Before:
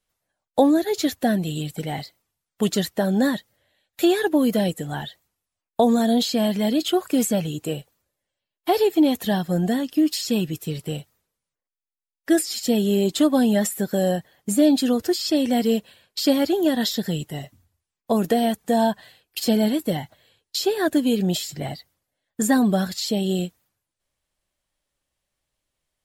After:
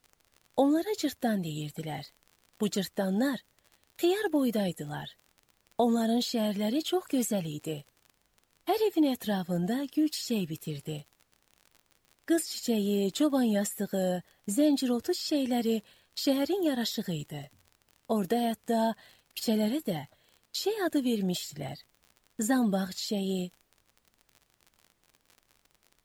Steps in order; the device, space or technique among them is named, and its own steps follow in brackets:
vinyl LP (tape wow and flutter 18 cents; surface crackle 51 per second −34 dBFS; pink noise bed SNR 43 dB)
level −8 dB

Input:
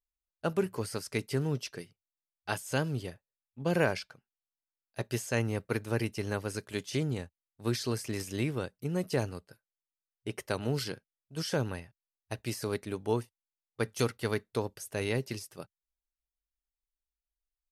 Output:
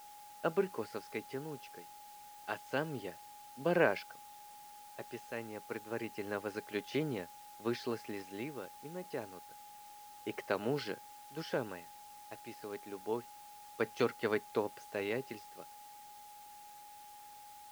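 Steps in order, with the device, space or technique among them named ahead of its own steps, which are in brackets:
shortwave radio (band-pass filter 250–2,900 Hz; amplitude tremolo 0.28 Hz, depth 68%; steady tone 830 Hz −52 dBFS; white noise bed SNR 19 dB)

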